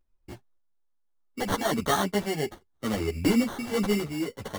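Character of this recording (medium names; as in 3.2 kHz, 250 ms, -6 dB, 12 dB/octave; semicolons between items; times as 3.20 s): random-step tremolo; aliases and images of a low sample rate 2.5 kHz, jitter 0%; a shimmering, thickened sound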